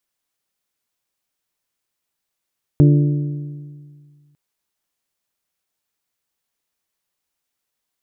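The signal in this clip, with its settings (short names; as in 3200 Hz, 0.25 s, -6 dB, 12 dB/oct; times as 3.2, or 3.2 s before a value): metal hit bell, lowest mode 146 Hz, modes 5, decay 1.96 s, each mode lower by 6 dB, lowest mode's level -7 dB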